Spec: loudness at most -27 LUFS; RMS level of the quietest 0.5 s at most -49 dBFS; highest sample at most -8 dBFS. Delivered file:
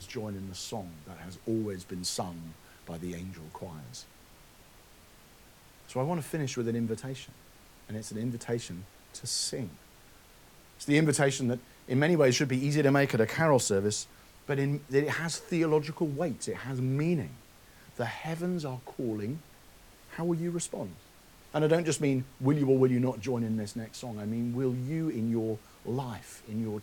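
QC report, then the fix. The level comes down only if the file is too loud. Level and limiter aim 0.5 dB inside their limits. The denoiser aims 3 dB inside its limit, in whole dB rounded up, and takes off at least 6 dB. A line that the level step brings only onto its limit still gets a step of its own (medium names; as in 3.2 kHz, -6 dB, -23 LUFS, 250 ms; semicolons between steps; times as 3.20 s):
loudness -30.5 LUFS: pass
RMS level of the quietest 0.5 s -56 dBFS: pass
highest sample -12.5 dBFS: pass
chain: none needed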